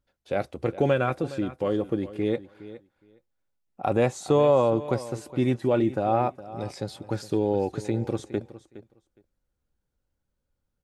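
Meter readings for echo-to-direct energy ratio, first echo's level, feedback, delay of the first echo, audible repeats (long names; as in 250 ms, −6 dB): −16.0 dB, −16.0 dB, 15%, 414 ms, 2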